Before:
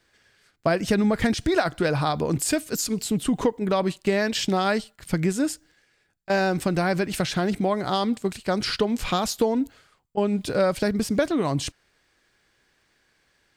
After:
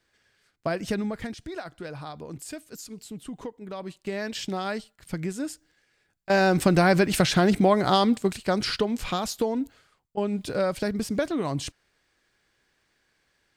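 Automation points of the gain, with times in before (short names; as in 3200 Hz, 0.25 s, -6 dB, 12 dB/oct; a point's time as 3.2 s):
0.93 s -6 dB
1.37 s -14.5 dB
3.69 s -14.5 dB
4.27 s -7.5 dB
5.48 s -7.5 dB
6.64 s +4 dB
7.9 s +4 dB
9.1 s -4 dB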